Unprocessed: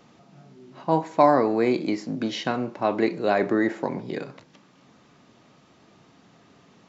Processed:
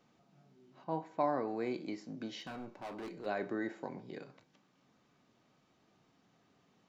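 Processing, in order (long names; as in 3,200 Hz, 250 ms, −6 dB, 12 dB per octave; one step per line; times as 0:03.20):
0:00.84–0:01.48: high-shelf EQ 5,200 Hz −11.5 dB
0:02.40–0:03.26: hard clipping −25.5 dBFS, distortion −13 dB
tuned comb filter 760 Hz, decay 0.39 s, mix 70%
level −5 dB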